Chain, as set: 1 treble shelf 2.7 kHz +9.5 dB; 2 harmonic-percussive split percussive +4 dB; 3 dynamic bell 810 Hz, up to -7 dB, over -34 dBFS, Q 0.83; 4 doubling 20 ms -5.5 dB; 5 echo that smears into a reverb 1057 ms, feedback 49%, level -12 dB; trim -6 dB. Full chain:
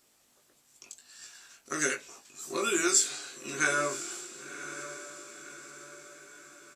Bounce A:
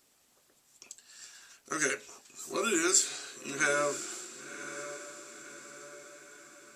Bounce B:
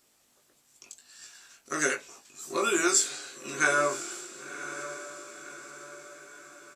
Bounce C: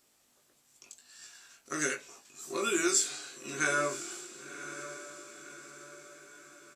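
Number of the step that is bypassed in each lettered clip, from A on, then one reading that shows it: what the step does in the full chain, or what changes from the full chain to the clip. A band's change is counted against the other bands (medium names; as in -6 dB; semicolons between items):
4, 500 Hz band +2.0 dB; 3, 1 kHz band +3.0 dB; 2, 8 kHz band -2.0 dB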